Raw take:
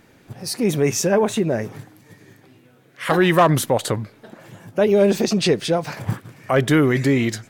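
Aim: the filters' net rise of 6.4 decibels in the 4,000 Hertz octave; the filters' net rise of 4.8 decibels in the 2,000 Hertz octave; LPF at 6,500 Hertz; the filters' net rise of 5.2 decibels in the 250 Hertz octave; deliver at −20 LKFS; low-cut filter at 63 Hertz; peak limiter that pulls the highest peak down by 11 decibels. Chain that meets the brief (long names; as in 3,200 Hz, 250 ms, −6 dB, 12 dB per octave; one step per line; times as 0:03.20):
high-pass filter 63 Hz
low-pass filter 6,500 Hz
parametric band 250 Hz +7 dB
parametric band 2,000 Hz +4 dB
parametric band 4,000 Hz +7.5 dB
level +1.5 dB
brickwall limiter −10 dBFS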